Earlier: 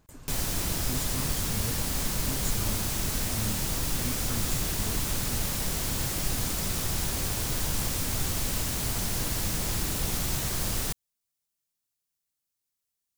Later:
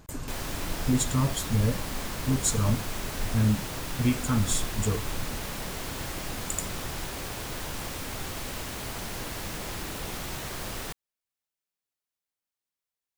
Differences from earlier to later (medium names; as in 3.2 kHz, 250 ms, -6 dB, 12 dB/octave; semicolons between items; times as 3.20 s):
speech +11.5 dB; background: add tone controls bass -8 dB, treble -9 dB